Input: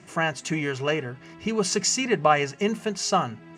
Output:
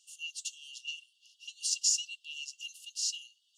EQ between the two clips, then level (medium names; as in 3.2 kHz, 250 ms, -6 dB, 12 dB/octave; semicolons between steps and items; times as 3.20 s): brick-wall FIR high-pass 2.7 kHz; treble shelf 6.1 kHz +5.5 dB; -6.0 dB